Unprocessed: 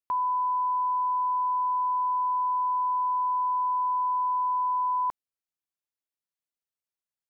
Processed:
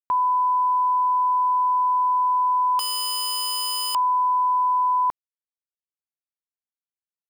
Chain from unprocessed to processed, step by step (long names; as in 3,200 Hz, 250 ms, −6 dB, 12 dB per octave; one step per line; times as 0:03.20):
0:02.79–0:03.95: wrap-around overflow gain 27.5 dB
bit reduction 11 bits
level +6 dB